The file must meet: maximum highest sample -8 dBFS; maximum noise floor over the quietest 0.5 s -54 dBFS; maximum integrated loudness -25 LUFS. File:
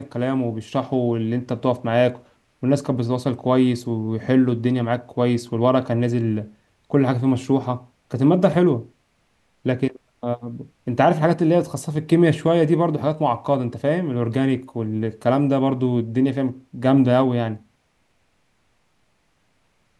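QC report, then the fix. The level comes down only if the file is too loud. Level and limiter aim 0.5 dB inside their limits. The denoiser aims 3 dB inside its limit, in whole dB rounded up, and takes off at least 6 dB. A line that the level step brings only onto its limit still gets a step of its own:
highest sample -4.0 dBFS: fail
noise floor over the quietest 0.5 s -65 dBFS: OK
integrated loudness -21.0 LUFS: fail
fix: gain -4.5 dB

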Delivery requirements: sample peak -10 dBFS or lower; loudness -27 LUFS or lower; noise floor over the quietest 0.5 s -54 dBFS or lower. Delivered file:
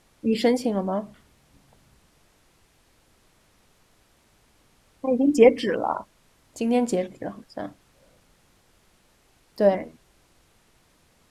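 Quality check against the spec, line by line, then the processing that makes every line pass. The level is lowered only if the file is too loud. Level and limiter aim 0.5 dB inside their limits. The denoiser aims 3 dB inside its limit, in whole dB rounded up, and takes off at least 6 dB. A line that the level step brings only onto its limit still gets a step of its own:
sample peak -3.0 dBFS: fail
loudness -23.5 LUFS: fail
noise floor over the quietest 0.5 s -62 dBFS: OK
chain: gain -4 dB; limiter -10.5 dBFS

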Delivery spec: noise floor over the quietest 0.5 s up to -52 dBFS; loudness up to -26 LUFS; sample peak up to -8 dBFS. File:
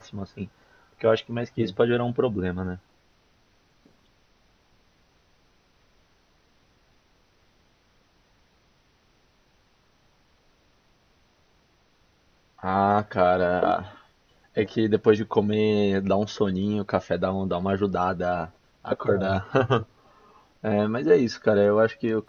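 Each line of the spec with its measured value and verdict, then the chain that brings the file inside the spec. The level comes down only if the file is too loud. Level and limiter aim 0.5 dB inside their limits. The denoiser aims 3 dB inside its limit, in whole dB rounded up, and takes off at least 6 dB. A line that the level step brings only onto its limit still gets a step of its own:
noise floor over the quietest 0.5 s -63 dBFS: OK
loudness -24.5 LUFS: fail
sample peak -5.5 dBFS: fail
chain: gain -2 dB; limiter -8.5 dBFS

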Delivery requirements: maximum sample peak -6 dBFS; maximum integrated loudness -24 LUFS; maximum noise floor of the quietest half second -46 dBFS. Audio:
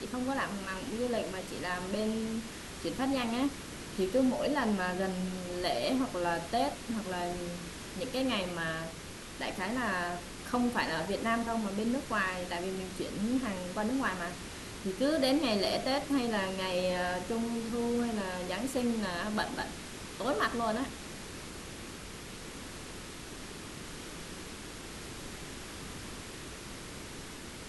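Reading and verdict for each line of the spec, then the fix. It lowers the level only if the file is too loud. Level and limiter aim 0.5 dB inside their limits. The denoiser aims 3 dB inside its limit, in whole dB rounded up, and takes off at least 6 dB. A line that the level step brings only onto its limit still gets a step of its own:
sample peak -17.0 dBFS: OK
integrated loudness -34.5 LUFS: OK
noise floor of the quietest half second -45 dBFS: fail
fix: denoiser 6 dB, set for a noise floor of -45 dBFS

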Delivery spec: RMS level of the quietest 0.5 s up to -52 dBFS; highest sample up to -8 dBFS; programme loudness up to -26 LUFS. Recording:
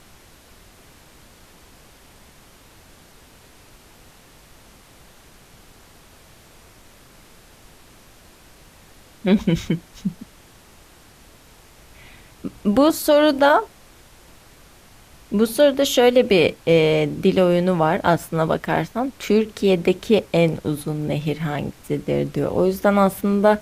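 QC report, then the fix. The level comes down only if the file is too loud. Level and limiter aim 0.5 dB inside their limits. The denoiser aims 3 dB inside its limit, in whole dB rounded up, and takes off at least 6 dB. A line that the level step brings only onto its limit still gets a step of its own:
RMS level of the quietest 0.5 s -49 dBFS: fail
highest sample -4.5 dBFS: fail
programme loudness -19.5 LUFS: fail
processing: gain -7 dB

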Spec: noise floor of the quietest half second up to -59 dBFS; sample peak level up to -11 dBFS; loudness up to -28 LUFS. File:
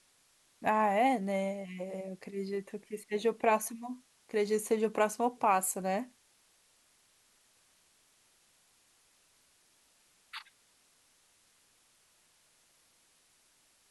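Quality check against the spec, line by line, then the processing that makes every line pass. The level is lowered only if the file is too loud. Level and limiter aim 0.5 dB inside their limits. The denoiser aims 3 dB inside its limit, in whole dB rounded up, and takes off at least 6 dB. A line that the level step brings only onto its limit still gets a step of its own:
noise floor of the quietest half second -68 dBFS: OK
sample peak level -16.0 dBFS: OK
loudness -32.5 LUFS: OK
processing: none

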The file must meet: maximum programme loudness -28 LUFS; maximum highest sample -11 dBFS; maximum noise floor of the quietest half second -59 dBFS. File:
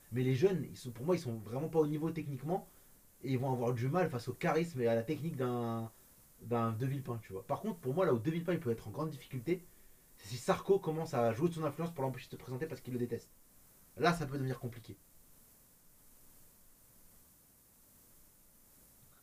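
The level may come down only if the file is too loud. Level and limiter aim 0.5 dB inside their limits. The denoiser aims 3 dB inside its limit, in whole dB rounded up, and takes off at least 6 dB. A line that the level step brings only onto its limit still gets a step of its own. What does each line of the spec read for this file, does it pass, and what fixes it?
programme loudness -36.5 LUFS: OK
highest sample -15.5 dBFS: OK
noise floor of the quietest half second -65 dBFS: OK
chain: none

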